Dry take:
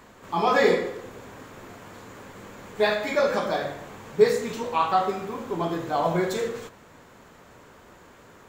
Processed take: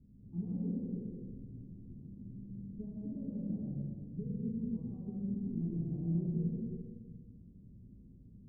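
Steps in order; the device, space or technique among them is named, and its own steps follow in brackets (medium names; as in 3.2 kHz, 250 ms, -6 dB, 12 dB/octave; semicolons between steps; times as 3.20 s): club heard from the street (peak limiter -17 dBFS, peak gain reduction 11 dB; low-pass 210 Hz 24 dB/octave; reverberation RT60 1.5 s, pre-delay 102 ms, DRR -3 dB); trim -2 dB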